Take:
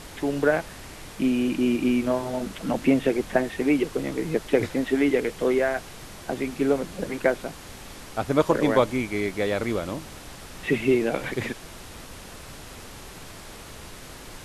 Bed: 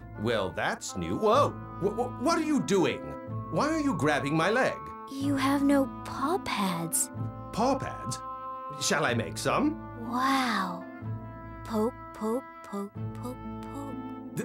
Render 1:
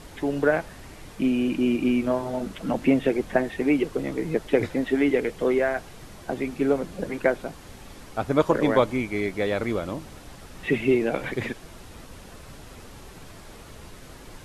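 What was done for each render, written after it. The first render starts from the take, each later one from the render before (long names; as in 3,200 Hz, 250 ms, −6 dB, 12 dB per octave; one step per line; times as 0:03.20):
broadband denoise 6 dB, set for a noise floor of −42 dBFS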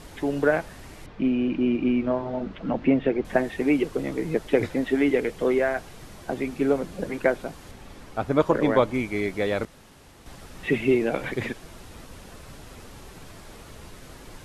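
0:01.06–0:03.25: high-frequency loss of the air 250 metres
0:07.71–0:08.94: high-shelf EQ 4,200 Hz −6 dB
0:09.65–0:10.26: fill with room tone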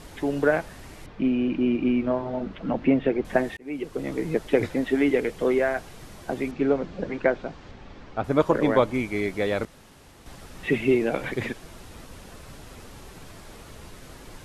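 0:03.57–0:04.14: fade in
0:06.51–0:08.24: Bessel low-pass filter 4,000 Hz, order 6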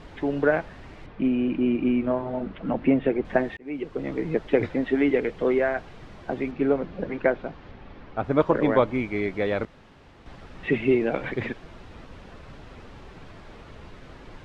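low-pass filter 3,200 Hz 12 dB per octave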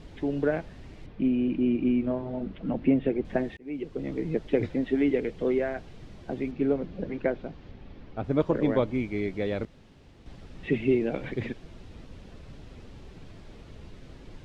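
parametric band 1,200 Hz −10.5 dB 2.3 octaves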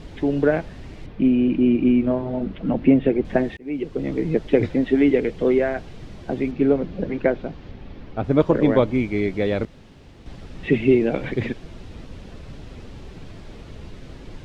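level +7.5 dB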